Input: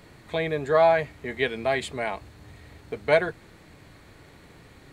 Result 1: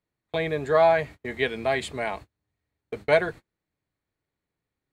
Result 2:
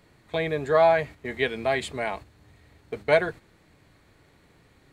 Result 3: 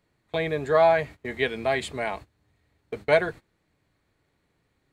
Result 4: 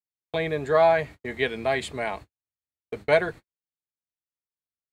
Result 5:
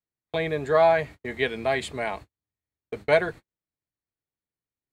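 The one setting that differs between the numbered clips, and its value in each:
gate, range: -35, -8, -21, -60, -47 dB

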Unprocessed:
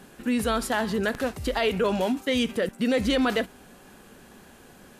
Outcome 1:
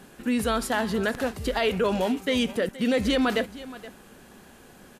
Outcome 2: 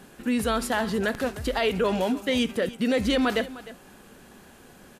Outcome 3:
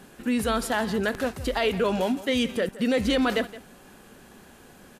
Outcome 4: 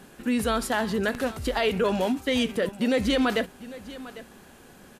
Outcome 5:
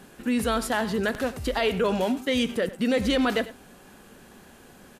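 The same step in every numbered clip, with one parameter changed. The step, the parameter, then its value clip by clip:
echo, time: 472, 305, 169, 800, 98 ms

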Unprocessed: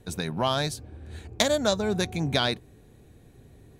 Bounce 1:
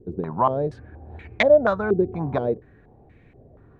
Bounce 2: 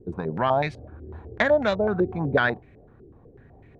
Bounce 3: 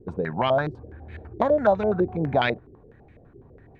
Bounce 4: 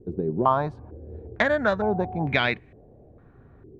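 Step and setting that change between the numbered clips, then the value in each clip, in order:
stepped low-pass, rate: 4.2, 8, 12, 2.2 Hz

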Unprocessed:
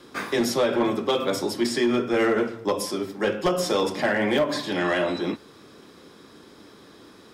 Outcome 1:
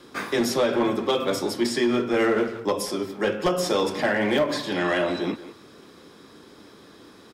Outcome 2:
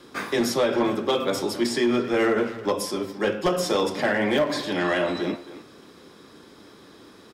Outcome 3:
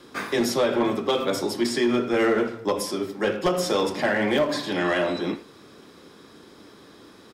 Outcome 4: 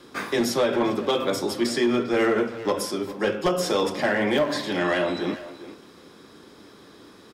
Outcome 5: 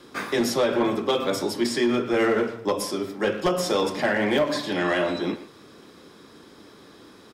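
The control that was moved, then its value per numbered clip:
speakerphone echo, time: 180, 270, 80, 400, 120 ms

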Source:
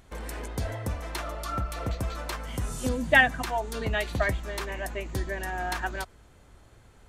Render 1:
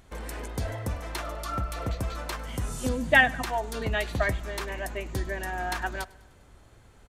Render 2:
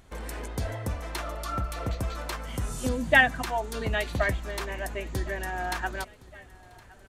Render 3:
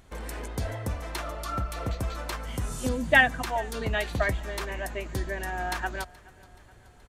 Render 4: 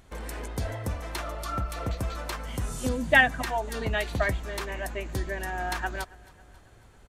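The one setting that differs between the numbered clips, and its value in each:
feedback echo, time: 0.101, 1.065, 0.426, 0.274 s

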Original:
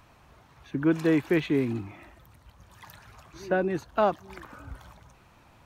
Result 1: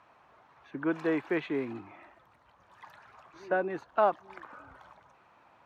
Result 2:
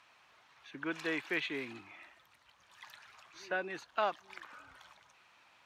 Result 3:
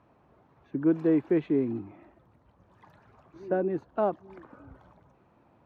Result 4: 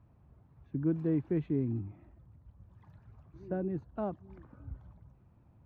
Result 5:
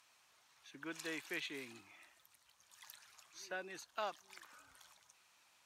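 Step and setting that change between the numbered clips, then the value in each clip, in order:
band-pass, frequency: 990, 2900, 350, 100, 7400 Hz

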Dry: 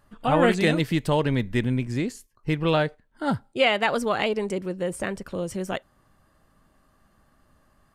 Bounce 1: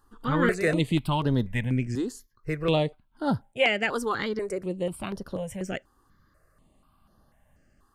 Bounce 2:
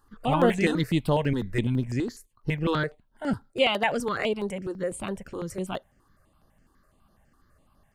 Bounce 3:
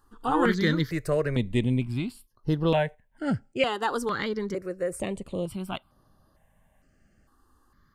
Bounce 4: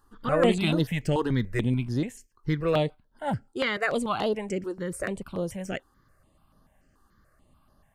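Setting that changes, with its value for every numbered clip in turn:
step phaser, rate: 4.1, 12, 2.2, 6.9 Hz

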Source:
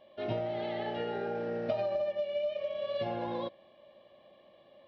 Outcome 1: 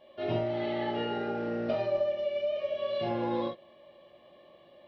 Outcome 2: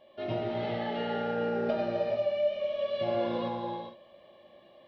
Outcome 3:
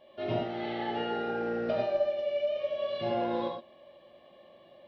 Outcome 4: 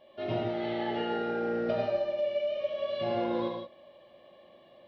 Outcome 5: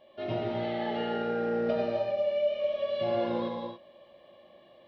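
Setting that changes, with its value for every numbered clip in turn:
non-linear reverb, gate: 80, 480, 140, 200, 310 ms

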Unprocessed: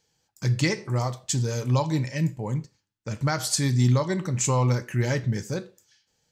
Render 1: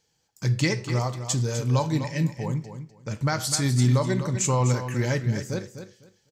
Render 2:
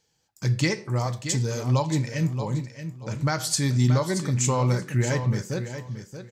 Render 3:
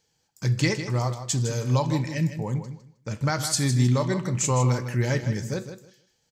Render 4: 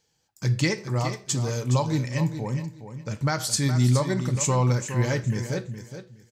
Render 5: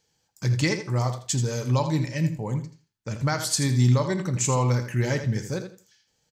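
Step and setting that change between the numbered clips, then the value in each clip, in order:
feedback echo, time: 251, 628, 157, 416, 82 ms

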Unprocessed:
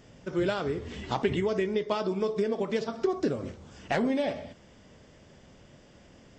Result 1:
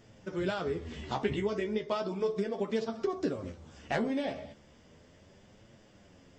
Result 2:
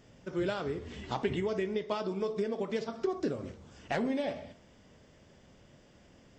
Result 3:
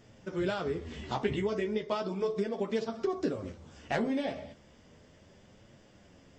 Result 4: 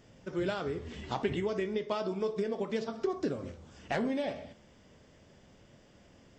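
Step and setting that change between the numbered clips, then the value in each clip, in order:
flange, regen: +28, -89, -20, +83%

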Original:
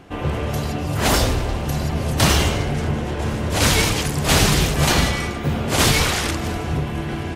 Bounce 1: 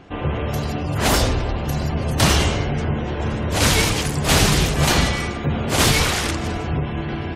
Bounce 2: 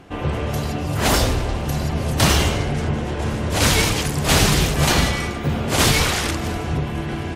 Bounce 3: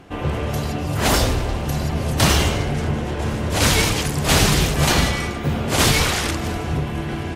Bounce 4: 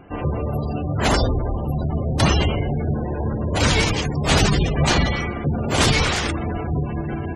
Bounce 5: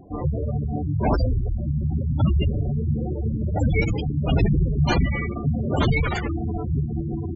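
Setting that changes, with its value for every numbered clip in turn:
spectral gate, under each frame's peak: -35, -50, -60, -20, -10 dB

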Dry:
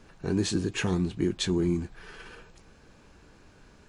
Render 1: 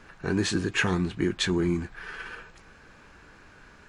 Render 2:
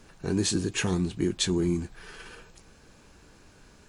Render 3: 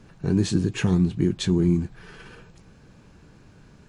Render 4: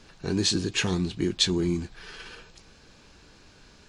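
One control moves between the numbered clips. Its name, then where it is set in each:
bell, frequency: 1600, 15000, 140, 4400 Hz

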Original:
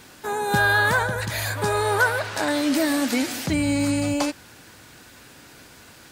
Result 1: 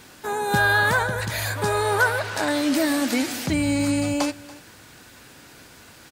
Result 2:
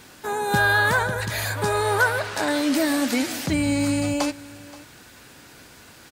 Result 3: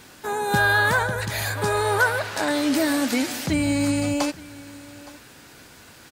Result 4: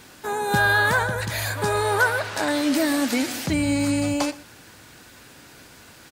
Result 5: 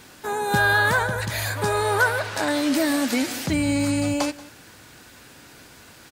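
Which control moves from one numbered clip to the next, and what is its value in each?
echo, time: 0.285, 0.527, 0.866, 0.119, 0.182 s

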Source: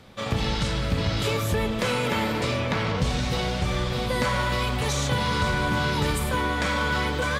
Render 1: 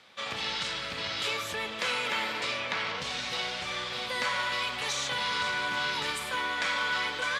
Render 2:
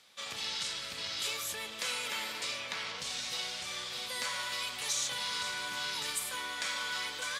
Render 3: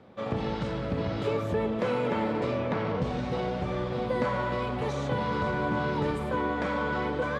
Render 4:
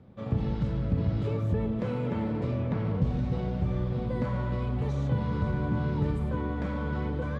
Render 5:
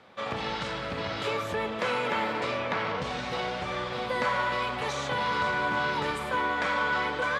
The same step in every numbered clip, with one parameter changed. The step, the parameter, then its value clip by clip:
band-pass, frequency: 2900, 7800, 420, 140, 1100 Hz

